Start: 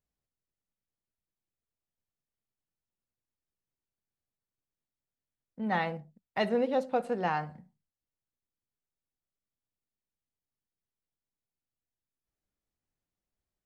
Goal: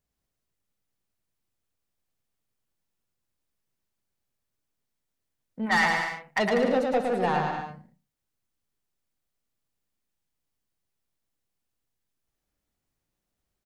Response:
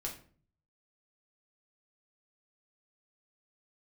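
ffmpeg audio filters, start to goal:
-filter_complex "[0:a]asplit=3[link_01][link_02][link_03];[link_01]afade=type=out:start_time=5.65:duration=0.02[link_04];[link_02]equalizer=frequency=125:width_type=o:width=1:gain=-11,equalizer=frequency=250:width_type=o:width=1:gain=-5,equalizer=frequency=500:width_type=o:width=1:gain=-9,equalizer=frequency=1000:width_type=o:width=1:gain=9,equalizer=frequency=2000:width_type=o:width=1:gain=11,equalizer=frequency=4000:width_type=o:width=1:gain=-3,afade=type=in:start_time=5.65:duration=0.02,afade=type=out:start_time=6.38:duration=0.02[link_05];[link_03]afade=type=in:start_time=6.38:duration=0.02[link_06];[link_04][link_05][link_06]amix=inputs=3:normalize=0,asoftclip=type=tanh:threshold=-24dB,aecho=1:1:110|192.5|254.4|300.8|335.6:0.631|0.398|0.251|0.158|0.1,volume=5.5dB"

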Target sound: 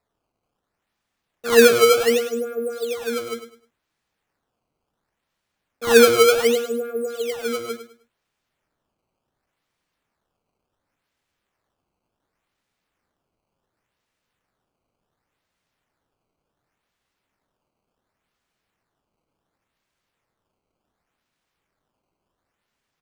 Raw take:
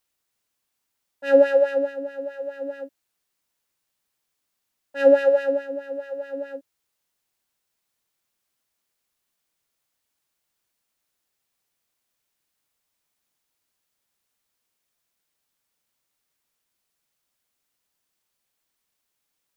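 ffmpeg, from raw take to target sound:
ffmpeg -i in.wav -filter_complex "[0:a]bass=frequency=250:gain=4,treble=frequency=4000:gain=-9,asplit=2[link_01][link_02];[link_02]alimiter=limit=-15.5dB:level=0:latency=1:release=194,volume=-2.5dB[link_03];[link_01][link_03]amix=inputs=2:normalize=0,asetrate=37485,aresample=44100,acrusher=samples=14:mix=1:aa=0.000001:lfo=1:lforange=22.4:lforate=0.69,aecho=1:1:103|206|309:0.282|0.0761|0.0205" out.wav

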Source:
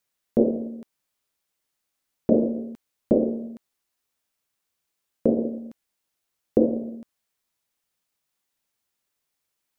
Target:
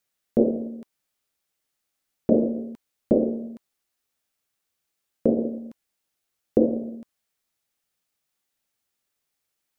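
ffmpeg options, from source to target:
ffmpeg -i in.wav -af "bandreject=frequency=1000:width=12" out.wav

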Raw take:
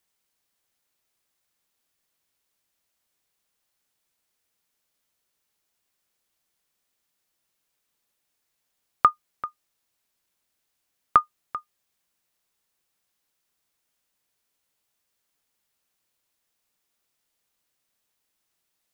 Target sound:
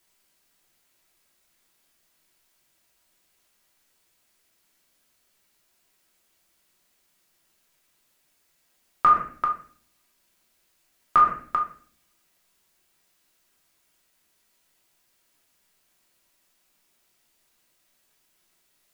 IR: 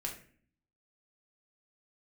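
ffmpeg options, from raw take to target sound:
-filter_complex "[0:a]equalizer=frequency=110:width_type=o:width=0.43:gain=-7.5[link_01];[1:a]atrim=start_sample=2205[link_02];[link_01][link_02]afir=irnorm=-1:irlink=0,alimiter=level_in=18dB:limit=-1dB:release=50:level=0:latency=1,volume=-8.5dB"

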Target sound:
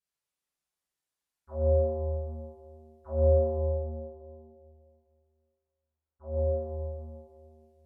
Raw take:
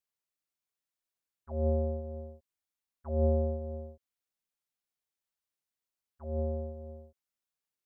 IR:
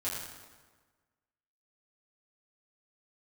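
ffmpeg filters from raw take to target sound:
-filter_complex "[0:a]asettb=1/sr,asplit=3[link_01][link_02][link_03];[link_01]atrim=end=3.564[link_04];[link_02]atrim=start=3.56:end=6.35,asetpts=PTS-STARTPTS,afade=type=in:duration=0.004:curve=qsin,afade=type=out:start_time=2.786:duration=0.004:curve=qsin,lowpass=1100[link_05];[link_03]atrim=start=6.346[link_06];[link_04][link_05]acrossfade=duration=0.004:curve1=hsin:curve2=qsin[link_07];[link_07][link_06]acrossfade=duration=0.004:curve1=qsin:curve2=hsin[link_08];[1:a]atrim=start_sample=2205,asetrate=26460,aresample=44100[link_09];[link_08][link_09]afir=irnorm=-1:irlink=0,volume=-4.5dB"

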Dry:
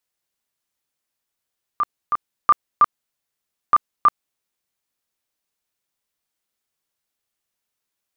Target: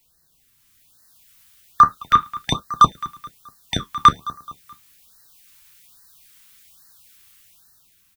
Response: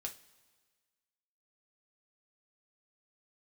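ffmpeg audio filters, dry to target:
-filter_complex "[0:a]acrossover=split=240|810[link_01][link_02][link_03];[link_03]dynaudnorm=framelen=280:gausssize=7:maxgain=11dB[link_04];[link_01][link_02][link_04]amix=inputs=3:normalize=0,crystalizer=i=8:c=0,asoftclip=type=hard:threshold=-4dB,acontrast=86,bass=frequency=250:gain=12,treble=frequency=4000:gain=-12,aecho=1:1:214|428|642:0.0668|0.0281|0.0118,flanger=delay=5.6:depth=8.9:regen=-56:speed=0.34:shape=sinusoidal,asplit=2[link_05][link_06];[1:a]atrim=start_sample=2205,atrim=end_sample=3087[link_07];[link_06][link_07]afir=irnorm=-1:irlink=0,volume=-3.5dB[link_08];[link_05][link_08]amix=inputs=2:normalize=0,alimiter=limit=-6dB:level=0:latency=1:release=172,lowshelf=frequency=320:gain=8,afftfilt=real='re*(1-between(b*sr/1024,520*pow(2800/520,0.5+0.5*sin(2*PI*1.2*pts/sr))/1.41,520*pow(2800/520,0.5+0.5*sin(2*PI*1.2*pts/sr))*1.41))':imag='im*(1-between(b*sr/1024,520*pow(2800/520,0.5+0.5*sin(2*PI*1.2*pts/sr))/1.41,520*pow(2800/520,0.5+0.5*sin(2*PI*1.2*pts/sr))*1.41))':win_size=1024:overlap=0.75,volume=2.5dB"

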